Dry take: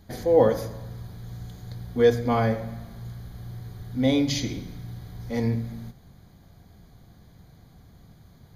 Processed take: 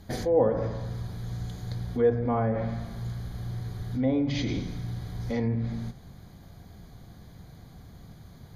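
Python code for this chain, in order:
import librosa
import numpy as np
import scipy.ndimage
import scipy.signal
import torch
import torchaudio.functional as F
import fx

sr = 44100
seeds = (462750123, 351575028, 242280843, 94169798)

p1 = fx.env_lowpass_down(x, sr, base_hz=1300.0, full_db=-18.5)
p2 = fx.over_compress(p1, sr, threshold_db=-32.0, ratio=-1.0)
p3 = p1 + (p2 * 10.0 ** (-1.5 / 20.0))
y = p3 * 10.0 ** (-4.5 / 20.0)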